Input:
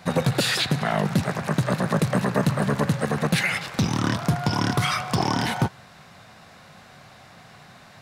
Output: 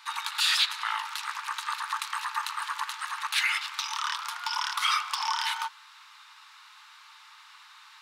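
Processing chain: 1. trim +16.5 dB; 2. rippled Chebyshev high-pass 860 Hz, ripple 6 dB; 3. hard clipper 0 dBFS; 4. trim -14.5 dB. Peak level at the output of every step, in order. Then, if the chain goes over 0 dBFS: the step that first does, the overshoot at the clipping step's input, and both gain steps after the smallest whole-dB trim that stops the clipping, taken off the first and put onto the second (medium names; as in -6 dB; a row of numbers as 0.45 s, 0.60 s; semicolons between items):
+7.0 dBFS, +4.0 dBFS, 0.0 dBFS, -14.5 dBFS; step 1, 4.0 dB; step 1 +12.5 dB, step 4 -10.5 dB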